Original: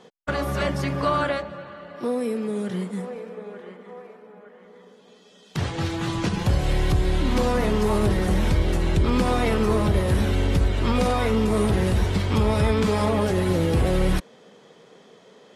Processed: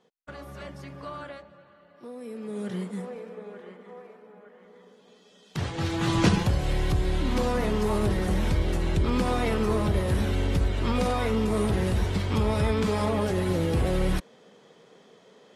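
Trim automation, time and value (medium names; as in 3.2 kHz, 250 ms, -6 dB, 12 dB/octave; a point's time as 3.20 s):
2.13 s -16 dB
2.67 s -4 dB
5.73 s -4 dB
6.30 s +5 dB
6.51 s -4 dB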